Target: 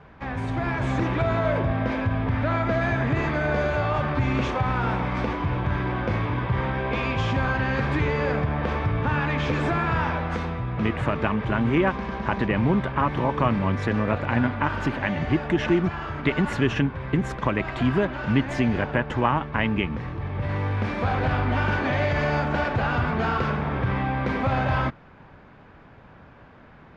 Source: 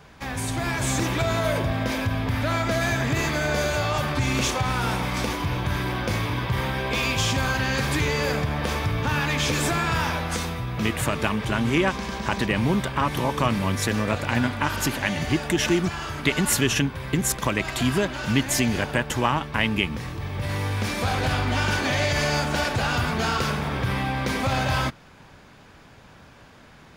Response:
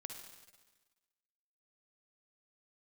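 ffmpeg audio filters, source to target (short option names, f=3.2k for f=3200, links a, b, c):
-af "lowpass=1.9k,volume=1dB"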